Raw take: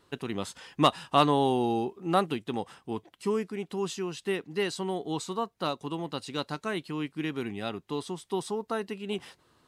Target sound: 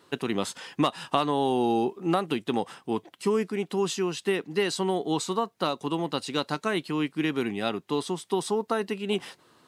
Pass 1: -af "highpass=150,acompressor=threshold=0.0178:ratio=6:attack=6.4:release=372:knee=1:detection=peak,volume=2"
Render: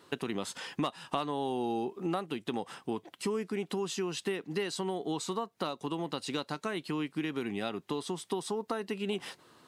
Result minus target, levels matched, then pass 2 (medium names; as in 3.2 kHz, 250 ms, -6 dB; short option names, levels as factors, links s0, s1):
compression: peak gain reduction +8.5 dB
-af "highpass=150,acompressor=threshold=0.0562:ratio=6:attack=6.4:release=372:knee=1:detection=peak,volume=2"